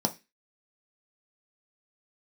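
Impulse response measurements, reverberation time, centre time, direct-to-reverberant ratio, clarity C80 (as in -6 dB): 0.20 s, 6 ms, 4.0 dB, 26.0 dB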